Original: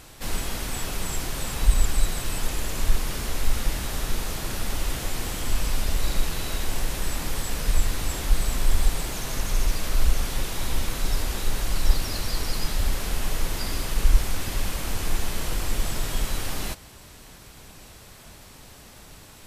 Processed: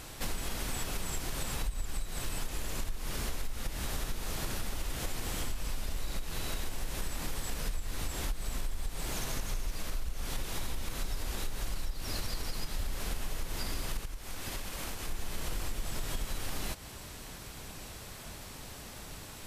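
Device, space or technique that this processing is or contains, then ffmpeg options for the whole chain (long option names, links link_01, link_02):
serial compression, leveller first: -filter_complex "[0:a]acompressor=threshold=-20dB:ratio=2.5,acompressor=threshold=-32dB:ratio=5,asettb=1/sr,asplit=3[link_01][link_02][link_03];[link_01]atrim=end=13.994[link_04];[link_02]atrim=start=13.99:end=15.08,asetpts=PTS-STARTPTS,afade=type=in:duration=0.004:curve=qsin,afade=type=out:start_time=1.086:duration=0.004:curve=qsin,lowshelf=frequency=190:gain=-6[link_05];[link_03]atrim=start=15.076[link_06];[link_04][link_05]acrossfade=duration=0.004:curve1=hsin:curve2=qsin[link_07];[link_07][link_06]acrossfade=duration=0.004:curve1=qsin:curve2=hsin,volume=1dB"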